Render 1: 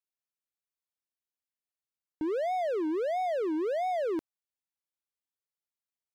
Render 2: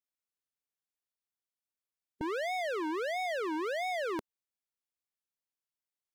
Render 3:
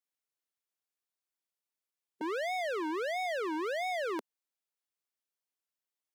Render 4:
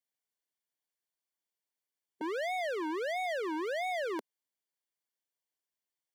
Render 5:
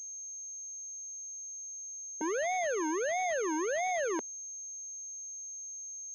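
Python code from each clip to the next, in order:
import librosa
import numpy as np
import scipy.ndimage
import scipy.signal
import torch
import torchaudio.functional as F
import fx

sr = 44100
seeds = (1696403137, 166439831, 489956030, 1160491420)

y1 = fx.spec_clip(x, sr, under_db=16)
y1 = F.gain(torch.from_numpy(y1), -3.0).numpy()
y2 = scipy.signal.sosfilt(scipy.signal.butter(4, 250.0, 'highpass', fs=sr, output='sos'), y1)
y3 = fx.notch_comb(y2, sr, f0_hz=1300.0)
y4 = fx.pwm(y3, sr, carrier_hz=6400.0)
y4 = F.gain(torch.from_numpy(y4), 2.5).numpy()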